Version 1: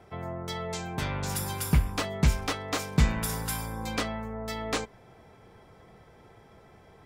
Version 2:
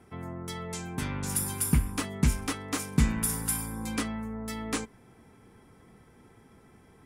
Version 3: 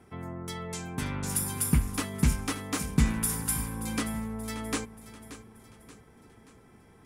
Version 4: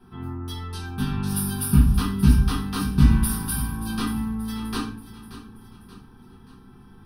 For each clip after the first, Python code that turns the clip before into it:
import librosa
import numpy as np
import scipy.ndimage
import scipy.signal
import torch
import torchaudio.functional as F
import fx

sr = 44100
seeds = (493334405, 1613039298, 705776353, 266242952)

y1 = fx.graphic_eq_15(x, sr, hz=(250, 630, 4000, 10000), db=(8, -8, -4, 11))
y1 = y1 * librosa.db_to_amplitude(-2.5)
y2 = fx.echo_feedback(y1, sr, ms=580, feedback_pct=46, wet_db=-14.5)
y3 = fx.fixed_phaser(y2, sr, hz=2100.0, stages=6)
y3 = fx.room_shoebox(y3, sr, seeds[0], volume_m3=42.0, walls='mixed', distance_m=1.2)